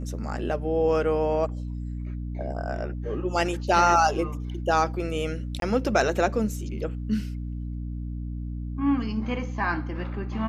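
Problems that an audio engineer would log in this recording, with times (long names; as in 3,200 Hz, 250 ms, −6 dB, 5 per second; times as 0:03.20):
mains hum 60 Hz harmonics 5 −32 dBFS
0:05.60–0:05.62: drop-out 22 ms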